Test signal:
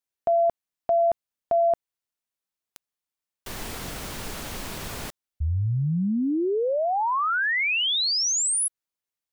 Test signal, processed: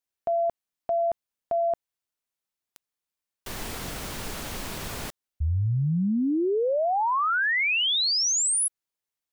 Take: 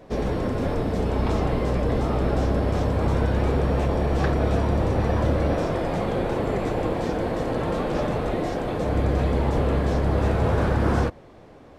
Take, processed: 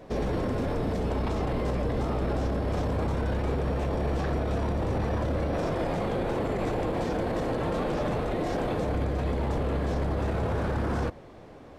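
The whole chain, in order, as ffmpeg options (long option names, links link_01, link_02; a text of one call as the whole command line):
ffmpeg -i in.wav -af "alimiter=limit=-21dB:level=0:latency=1:release=20" out.wav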